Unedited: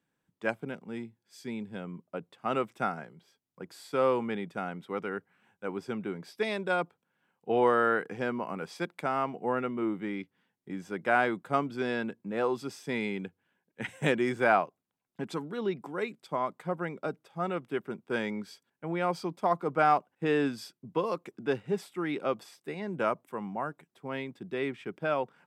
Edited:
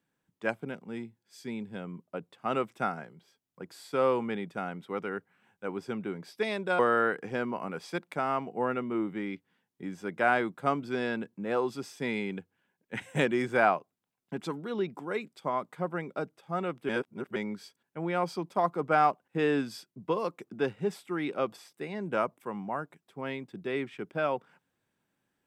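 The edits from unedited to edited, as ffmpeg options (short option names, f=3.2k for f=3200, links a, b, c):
-filter_complex "[0:a]asplit=4[a][b][c][d];[a]atrim=end=6.792[e];[b]atrim=start=7.658:end=17.762[f];[c]atrim=start=17.758:end=18.232,asetpts=PTS-STARTPTS,areverse[g];[d]atrim=start=18.228[h];[e][f]acrossfade=d=0.004:c1=hsin:c2=hsin[i];[i][g]acrossfade=d=0.004:c1=hsin:c2=hsin[j];[j][h]acrossfade=d=0.004:c1=hsin:c2=hsin"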